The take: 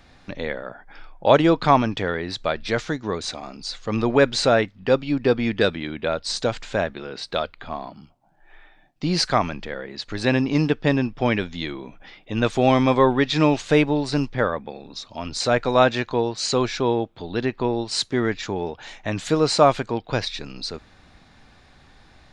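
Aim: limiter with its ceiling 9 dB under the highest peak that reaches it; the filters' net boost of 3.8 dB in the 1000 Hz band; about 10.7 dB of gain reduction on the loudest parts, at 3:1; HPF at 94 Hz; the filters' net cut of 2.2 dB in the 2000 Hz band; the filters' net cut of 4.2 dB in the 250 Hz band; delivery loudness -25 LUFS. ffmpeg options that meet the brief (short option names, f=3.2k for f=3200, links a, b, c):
-af "highpass=94,equalizer=f=250:t=o:g=-5.5,equalizer=f=1k:t=o:g=6.5,equalizer=f=2k:t=o:g=-5.5,acompressor=threshold=-22dB:ratio=3,volume=5.5dB,alimiter=limit=-11.5dB:level=0:latency=1"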